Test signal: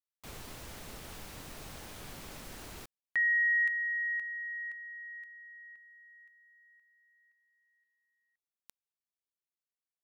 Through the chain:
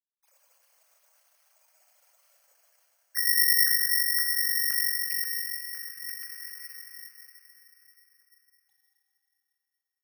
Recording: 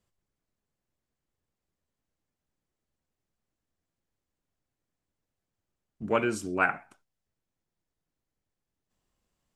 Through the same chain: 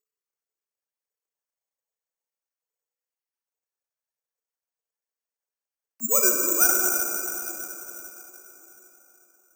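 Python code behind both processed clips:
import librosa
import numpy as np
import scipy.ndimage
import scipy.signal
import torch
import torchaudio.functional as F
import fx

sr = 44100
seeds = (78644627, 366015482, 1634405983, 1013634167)

y = fx.sine_speech(x, sr)
y = fx.rider(y, sr, range_db=5, speed_s=2.0)
y = fx.rev_plate(y, sr, seeds[0], rt60_s=4.1, hf_ratio=0.95, predelay_ms=0, drr_db=-0.5)
y = (np.kron(scipy.signal.resample_poly(y, 1, 6), np.eye(6)[0]) * 6)[:len(y)]
y = F.gain(torch.from_numpy(y), -2.5).numpy()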